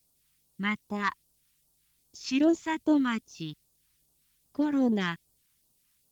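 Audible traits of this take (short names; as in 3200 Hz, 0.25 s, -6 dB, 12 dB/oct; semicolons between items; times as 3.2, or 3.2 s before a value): a quantiser's noise floor 12-bit, dither triangular; phasing stages 2, 2.5 Hz, lowest notch 520–1900 Hz; Opus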